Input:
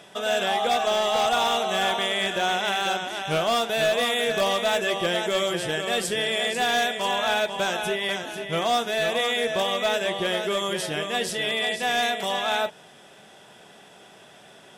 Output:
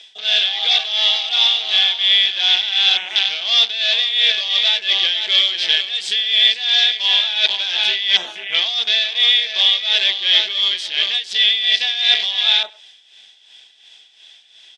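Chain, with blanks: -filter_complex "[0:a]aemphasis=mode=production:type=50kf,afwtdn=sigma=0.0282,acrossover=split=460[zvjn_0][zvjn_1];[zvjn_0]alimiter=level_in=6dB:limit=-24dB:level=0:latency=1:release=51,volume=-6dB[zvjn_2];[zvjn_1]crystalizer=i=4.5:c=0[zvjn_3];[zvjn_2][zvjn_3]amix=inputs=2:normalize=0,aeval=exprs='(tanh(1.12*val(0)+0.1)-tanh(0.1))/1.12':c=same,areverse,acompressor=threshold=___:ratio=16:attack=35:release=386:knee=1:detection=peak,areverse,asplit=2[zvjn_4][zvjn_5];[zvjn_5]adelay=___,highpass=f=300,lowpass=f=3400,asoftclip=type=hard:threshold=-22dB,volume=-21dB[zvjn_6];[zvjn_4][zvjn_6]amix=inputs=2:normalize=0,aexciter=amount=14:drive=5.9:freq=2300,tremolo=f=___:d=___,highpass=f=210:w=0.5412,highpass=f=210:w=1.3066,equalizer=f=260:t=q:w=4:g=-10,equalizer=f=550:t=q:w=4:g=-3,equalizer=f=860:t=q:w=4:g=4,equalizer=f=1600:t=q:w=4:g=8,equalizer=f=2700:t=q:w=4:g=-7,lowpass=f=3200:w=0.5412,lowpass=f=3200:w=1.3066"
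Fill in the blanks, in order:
-26dB, 100, 2.8, 0.65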